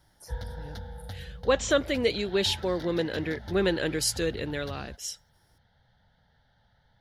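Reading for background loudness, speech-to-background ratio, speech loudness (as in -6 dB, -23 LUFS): -42.5 LUFS, 14.0 dB, -28.5 LUFS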